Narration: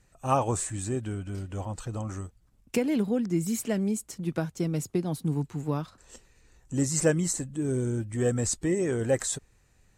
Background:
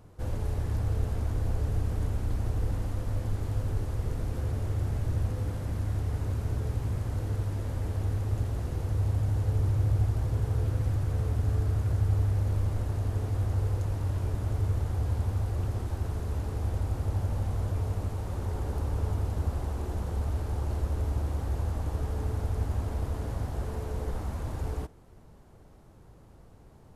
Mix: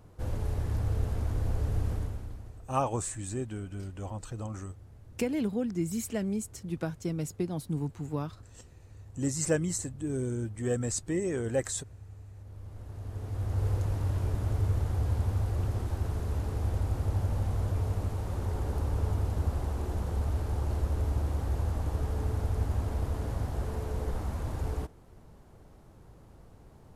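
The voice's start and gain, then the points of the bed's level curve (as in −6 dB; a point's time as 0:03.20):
2.45 s, −4.0 dB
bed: 0:01.92 −1 dB
0:02.70 −22 dB
0:12.30 −22 dB
0:13.68 0 dB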